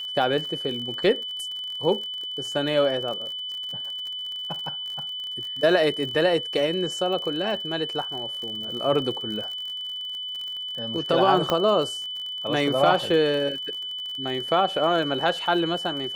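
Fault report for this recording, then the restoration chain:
crackle 50/s -32 dBFS
tone 3000 Hz -30 dBFS
11.5 pop -10 dBFS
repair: de-click; notch 3000 Hz, Q 30

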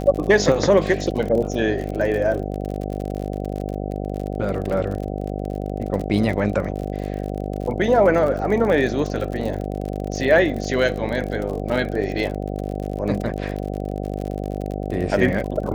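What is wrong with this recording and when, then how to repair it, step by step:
buzz 50 Hz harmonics 15 -27 dBFS
crackle 48/s -27 dBFS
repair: de-click; de-hum 50 Hz, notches 15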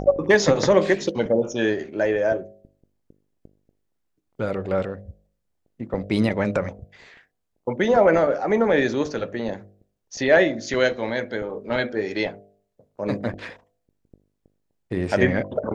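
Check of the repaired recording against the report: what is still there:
none

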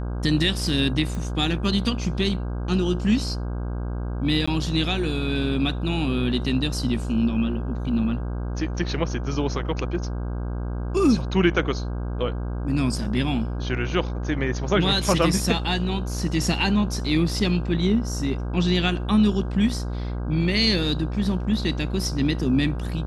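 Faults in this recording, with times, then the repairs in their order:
buzz 60 Hz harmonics 27 -28 dBFS
1.15 pop
4.46–4.47 gap 15 ms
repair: de-click; de-hum 60 Hz, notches 27; interpolate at 4.46, 15 ms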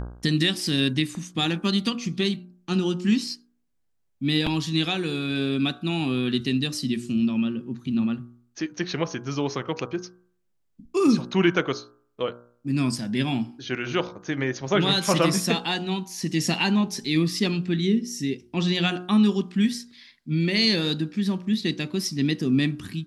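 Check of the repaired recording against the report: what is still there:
none

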